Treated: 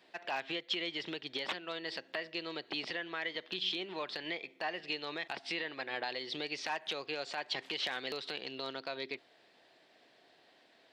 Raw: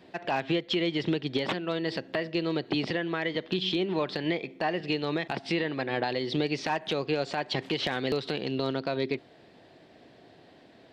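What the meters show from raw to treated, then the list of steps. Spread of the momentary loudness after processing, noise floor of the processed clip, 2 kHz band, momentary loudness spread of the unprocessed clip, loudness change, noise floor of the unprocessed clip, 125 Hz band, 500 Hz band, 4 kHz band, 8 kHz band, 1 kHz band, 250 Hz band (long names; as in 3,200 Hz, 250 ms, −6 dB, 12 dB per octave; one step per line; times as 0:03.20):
5 LU, −66 dBFS, −4.5 dB, 3 LU, −8.0 dB, −56 dBFS, −21.5 dB, −12.0 dB, −3.5 dB, can't be measured, −8.0 dB, −16.0 dB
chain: high-pass filter 1,300 Hz 6 dB per octave
level −3 dB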